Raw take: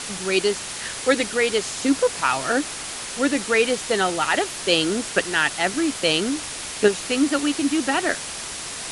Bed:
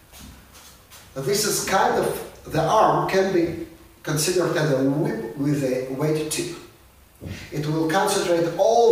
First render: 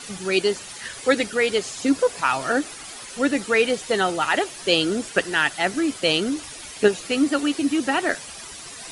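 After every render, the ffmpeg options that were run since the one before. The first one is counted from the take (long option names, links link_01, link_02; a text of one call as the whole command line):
ffmpeg -i in.wav -af "afftdn=noise_reduction=11:noise_floor=-33" out.wav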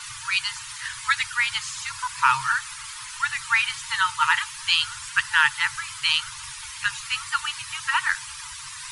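ffmpeg -i in.wav -af "afftfilt=real='re*(1-between(b*sr/4096,140,870))':imag='im*(1-between(b*sr/4096,140,870))':win_size=4096:overlap=0.75,equalizer=frequency=890:width_type=o:width=2.8:gain=3.5" out.wav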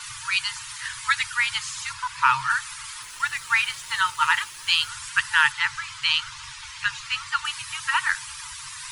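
ffmpeg -i in.wav -filter_complex "[0:a]asettb=1/sr,asplit=3[link_01][link_02][link_03];[link_01]atrim=end=1.934[link_04];[link_02]atrim=start=1.93:end=2.5,asetpts=PTS-STARTPTS,afade=type=in:duration=0.004:curve=qsin,afade=type=out:start_time=0.566:duration=0.004:curve=qsin,acrossover=split=5300[link_05][link_06];[link_06]acompressor=threshold=-46dB:ratio=4:attack=1:release=60[link_07];[link_05][link_07]amix=inputs=2:normalize=0[link_08];[link_03]atrim=start=2.496[link_09];[link_04][link_08]acrossfade=duration=0.004:curve1=hsin:curve2=qsin[link_10];[link_10][link_09]acrossfade=duration=0.004:curve1=qsin:curve2=hsin,asettb=1/sr,asplit=3[link_11][link_12][link_13];[link_11]atrim=end=3.024[link_14];[link_12]atrim=start=3.02:end=4.89,asetpts=PTS-STARTPTS,afade=type=in:duration=0.004:curve=qsin,afade=type=out:start_time=1.866:duration=0.004:curve=qsin,aeval=exprs='sgn(val(0))*max(abs(val(0))-0.00531,0)':channel_layout=same[link_15];[link_13]atrim=start=4.886[link_16];[link_14][link_15]acrossfade=duration=0.004:curve1=hsin:curve2=qsin[link_17];[link_17][link_16]acrossfade=duration=0.004:curve1=qsin:curve2=hsin,asettb=1/sr,asplit=3[link_18][link_19][link_20];[link_18]atrim=end=5.524[link_21];[link_19]atrim=start=5.52:end=7.45,asetpts=PTS-STARTPTS,afade=type=in:duration=0.004:curve=qsin,afade=type=out:start_time=1.926:duration=0.004:curve=qsin,lowpass=6300[link_22];[link_20]atrim=start=7.446[link_23];[link_21][link_22]acrossfade=duration=0.004:curve1=hsin:curve2=qsin[link_24];[link_24][link_23]acrossfade=duration=0.004:curve1=qsin:curve2=hsin" out.wav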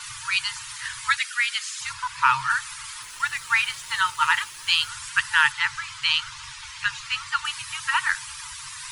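ffmpeg -i in.wav -filter_complex "[0:a]asplit=3[link_01][link_02][link_03];[link_01]afade=type=out:start_time=1.16:duration=0.02[link_04];[link_02]highpass=frequency=1400:width=0.5412,highpass=frequency=1400:width=1.3066,afade=type=in:start_time=1.16:duration=0.02,afade=type=out:start_time=1.8:duration=0.02[link_05];[link_03]afade=type=in:start_time=1.8:duration=0.02[link_06];[link_04][link_05][link_06]amix=inputs=3:normalize=0" out.wav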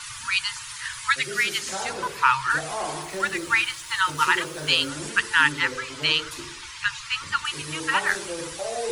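ffmpeg -i in.wav -i bed.wav -filter_complex "[1:a]volume=-13.5dB[link_01];[0:a][link_01]amix=inputs=2:normalize=0" out.wav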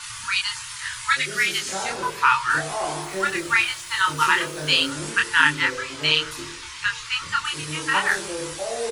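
ffmpeg -i in.wav -filter_complex "[0:a]asplit=2[link_01][link_02];[link_02]adelay=26,volume=-2.5dB[link_03];[link_01][link_03]amix=inputs=2:normalize=0,asplit=2[link_04][link_05];[link_05]adelay=816.3,volume=-27dB,highshelf=frequency=4000:gain=-18.4[link_06];[link_04][link_06]amix=inputs=2:normalize=0" out.wav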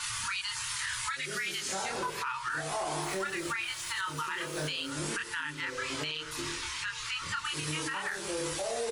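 ffmpeg -i in.wav -af "acompressor=threshold=-28dB:ratio=8,alimiter=level_in=0.5dB:limit=-24dB:level=0:latency=1:release=42,volume=-0.5dB" out.wav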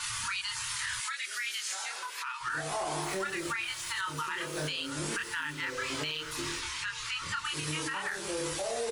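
ffmpeg -i in.wav -filter_complex "[0:a]asettb=1/sr,asplit=3[link_01][link_02][link_03];[link_01]atrim=end=1.004[link_04];[link_02]atrim=start=1:end=2.41,asetpts=PTS-STARTPTS,afade=type=in:duration=0.004:curve=qsin,afade=type=out:start_time=1.406:duration=0.004:curve=qsin,highpass=1300[link_05];[link_03]atrim=start=2.406[link_06];[link_04][link_05]acrossfade=duration=0.004:curve1=hsin:curve2=qsin[link_07];[link_07][link_06]acrossfade=duration=0.004:curve1=qsin:curve2=hsin,asettb=1/sr,asplit=3[link_08][link_09][link_10];[link_08]atrim=end=5.124[link_11];[link_09]atrim=start=5.12:end=6.6,asetpts=PTS-STARTPTS,afade=type=in:duration=0.004:curve=qsin,afade=type=out:start_time=1.476:duration=0.004:curve=qsin,aeval=exprs='val(0)+0.5*0.00335*sgn(val(0))':channel_layout=same[link_12];[link_10]atrim=start=6.596[link_13];[link_11][link_12]acrossfade=duration=0.004:curve1=hsin:curve2=qsin[link_14];[link_14][link_13]acrossfade=duration=0.004:curve1=qsin:curve2=hsin" out.wav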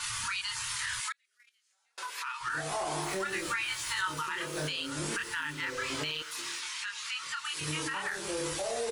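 ffmpeg -i in.wav -filter_complex "[0:a]asettb=1/sr,asplit=3[link_01][link_02][link_03];[link_01]atrim=end=1.124[link_04];[link_02]atrim=start=1.12:end=1.98,asetpts=PTS-STARTPTS,afade=type=in:duration=0.004:curve=qsin,afade=type=out:start_time=0.856:duration=0.004:curve=qsin,agate=range=-38dB:threshold=-31dB:ratio=16:release=100:detection=peak[link_05];[link_03]atrim=start=1.976[link_06];[link_04][link_05]acrossfade=duration=0.004:curve1=hsin:curve2=qsin[link_07];[link_07][link_06]acrossfade=duration=0.004:curve1=qsin:curve2=hsin,asettb=1/sr,asplit=3[link_08][link_09][link_10];[link_08]atrim=end=3.294[link_11];[link_09]atrim=start=3.29:end=4.19,asetpts=PTS-STARTPTS,afade=type=in:duration=0.004:curve=qsin,afade=type=out:start_time=0.896:duration=0.004:curve=qsin,asplit=2[link_12][link_13];[link_13]adelay=16,volume=-3dB[link_14];[link_12][link_14]amix=inputs=2:normalize=0,atrim=end_sample=39690[link_15];[link_10]atrim=start=4.186[link_16];[link_11][link_15]acrossfade=duration=0.004:curve1=hsin:curve2=qsin[link_17];[link_17][link_16]acrossfade=duration=0.004:curve1=qsin:curve2=hsin,asettb=1/sr,asplit=3[link_18][link_19][link_20];[link_18]atrim=end=6.224[link_21];[link_19]atrim=start=6.22:end=7.61,asetpts=PTS-STARTPTS,afade=type=in:duration=0.004:curve=qsin,afade=type=out:start_time=1.386:duration=0.004:curve=qsin,highpass=frequency=1400:poles=1[link_22];[link_20]atrim=start=7.606[link_23];[link_21][link_22]acrossfade=duration=0.004:curve1=hsin:curve2=qsin[link_24];[link_24][link_23]acrossfade=duration=0.004:curve1=qsin:curve2=hsin" out.wav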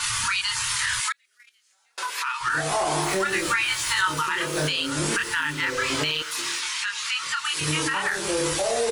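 ffmpeg -i in.wav -af "volume=9.5dB" out.wav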